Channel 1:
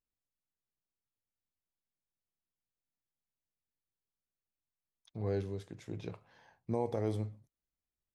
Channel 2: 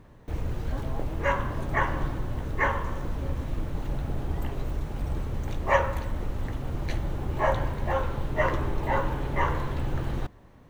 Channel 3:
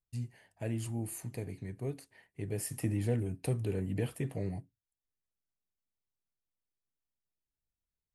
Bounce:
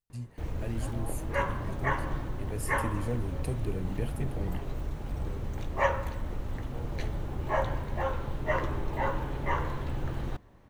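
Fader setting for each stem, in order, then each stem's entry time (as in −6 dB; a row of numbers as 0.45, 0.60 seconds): −13.0, −4.0, −1.5 decibels; 0.00, 0.10, 0.00 seconds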